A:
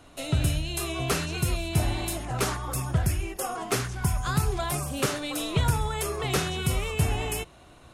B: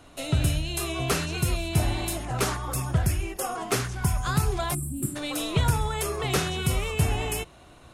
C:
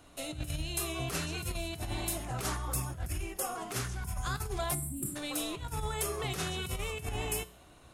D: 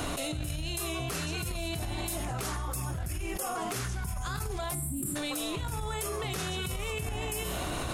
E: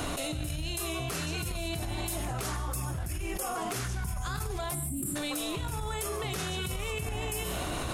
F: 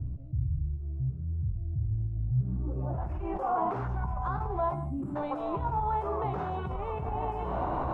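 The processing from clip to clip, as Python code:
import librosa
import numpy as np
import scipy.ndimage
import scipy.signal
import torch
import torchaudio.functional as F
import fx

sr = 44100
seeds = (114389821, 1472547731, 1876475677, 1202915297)

y1 = fx.spec_box(x, sr, start_s=4.74, length_s=0.42, low_hz=370.0, high_hz=7200.0, gain_db=-26)
y1 = y1 * 10.0 ** (1.0 / 20.0)
y2 = fx.over_compress(y1, sr, threshold_db=-26.0, ratio=-0.5)
y2 = fx.high_shelf(y2, sr, hz=8300.0, db=7.0)
y2 = fx.comb_fb(y2, sr, f0_hz=61.0, decay_s=0.52, harmonics='odd', damping=0.0, mix_pct=50)
y2 = y2 * 10.0 ** (-3.0 / 20.0)
y3 = fx.env_flatten(y2, sr, amount_pct=100)
y3 = y3 * 10.0 ** (-3.5 / 20.0)
y4 = y3 + 10.0 ** (-15.5 / 20.0) * np.pad(y3, (int(147 * sr / 1000.0), 0))[:len(y3)]
y5 = fx.filter_sweep_lowpass(y4, sr, from_hz=110.0, to_hz=920.0, start_s=2.33, end_s=3.02, q=3.4)
y5 = fx.doubler(y5, sr, ms=15.0, db=-10.5)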